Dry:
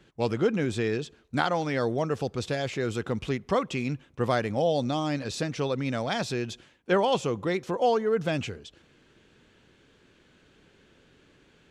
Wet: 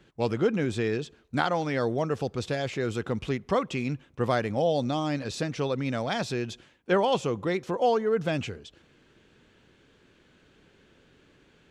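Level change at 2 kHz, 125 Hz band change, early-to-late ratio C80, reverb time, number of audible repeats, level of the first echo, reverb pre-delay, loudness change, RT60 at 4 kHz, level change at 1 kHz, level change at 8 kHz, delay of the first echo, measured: −0.5 dB, 0.0 dB, no reverb audible, no reverb audible, no echo audible, no echo audible, no reverb audible, 0.0 dB, no reverb audible, 0.0 dB, −2.0 dB, no echo audible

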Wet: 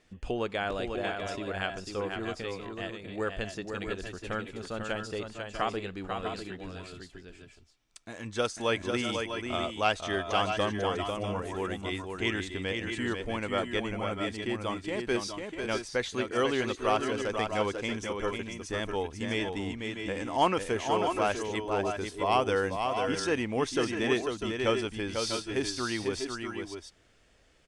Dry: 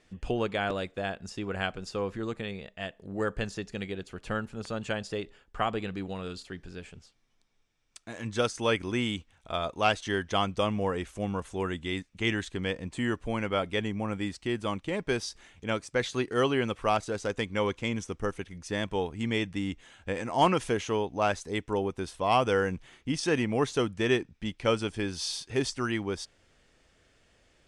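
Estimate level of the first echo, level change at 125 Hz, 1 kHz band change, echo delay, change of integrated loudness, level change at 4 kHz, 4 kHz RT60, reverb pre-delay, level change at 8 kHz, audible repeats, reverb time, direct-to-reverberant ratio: −5.5 dB, −3.5 dB, 0.0 dB, 496 ms, −0.5 dB, 0.0 dB, no reverb audible, no reverb audible, 0.0 dB, 2, no reverb audible, no reverb audible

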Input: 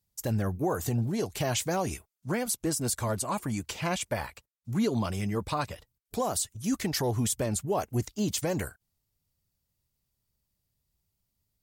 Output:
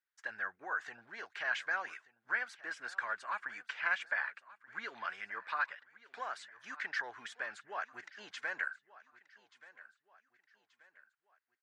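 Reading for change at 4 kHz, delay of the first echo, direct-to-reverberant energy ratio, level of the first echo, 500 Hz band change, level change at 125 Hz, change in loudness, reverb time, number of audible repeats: −11.5 dB, 1,181 ms, no reverb audible, −19.0 dB, −19.5 dB, below −40 dB, −8.5 dB, no reverb audible, 3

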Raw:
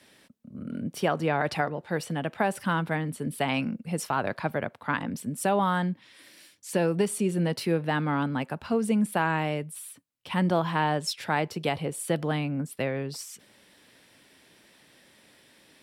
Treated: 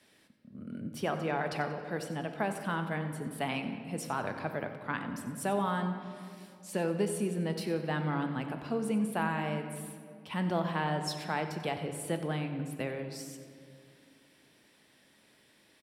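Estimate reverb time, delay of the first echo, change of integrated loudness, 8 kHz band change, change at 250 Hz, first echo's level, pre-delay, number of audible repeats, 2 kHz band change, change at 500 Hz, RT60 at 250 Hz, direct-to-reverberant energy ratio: 2.4 s, 92 ms, −6.0 dB, −6.5 dB, −5.5 dB, −14.0 dB, 3 ms, 1, −6.0 dB, −5.5 dB, 3.5 s, 6.0 dB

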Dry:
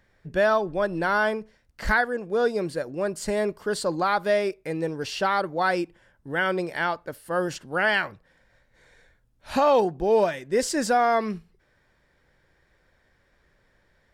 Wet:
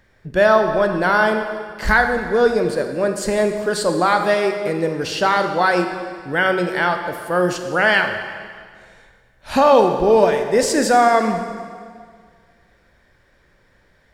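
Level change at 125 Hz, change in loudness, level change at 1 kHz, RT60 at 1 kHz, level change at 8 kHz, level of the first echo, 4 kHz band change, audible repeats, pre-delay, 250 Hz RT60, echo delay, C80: +7.5 dB, +7.5 dB, +7.5 dB, 1.9 s, +7.5 dB, no echo audible, +7.5 dB, no echo audible, 18 ms, 1.9 s, no echo audible, 8.0 dB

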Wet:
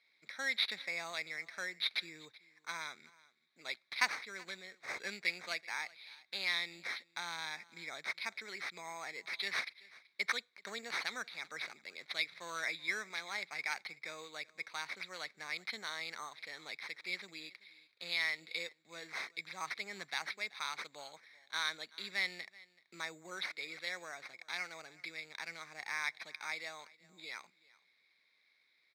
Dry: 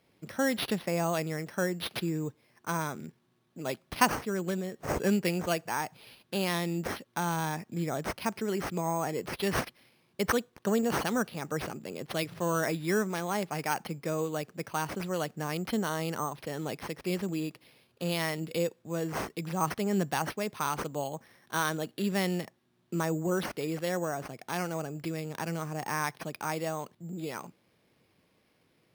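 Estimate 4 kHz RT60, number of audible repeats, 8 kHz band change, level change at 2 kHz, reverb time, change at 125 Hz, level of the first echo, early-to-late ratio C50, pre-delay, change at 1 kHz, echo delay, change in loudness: no reverb audible, 1, −10.5 dB, −0.5 dB, no reverb audible, −29.5 dB, −22.5 dB, no reverb audible, no reverb audible, −12.5 dB, 380 ms, −7.5 dB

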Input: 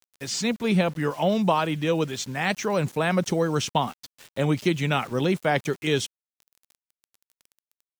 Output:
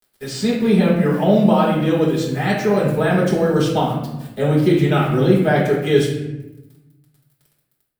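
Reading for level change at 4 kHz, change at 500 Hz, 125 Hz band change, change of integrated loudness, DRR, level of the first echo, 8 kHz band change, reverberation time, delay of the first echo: +1.5 dB, +8.5 dB, +9.0 dB, +8.0 dB, −6.0 dB, no echo audible, −2.0 dB, 1.0 s, no echo audible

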